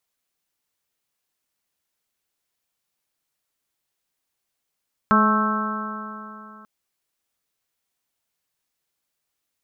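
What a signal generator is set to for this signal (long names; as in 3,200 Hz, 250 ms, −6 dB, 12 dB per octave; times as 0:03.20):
stiff-string partials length 1.54 s, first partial 212 Hz, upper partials −10/−10.5/−10/−1/0.5/−8.5 dB, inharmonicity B 0.002, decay 3.00 s, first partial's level −17 dB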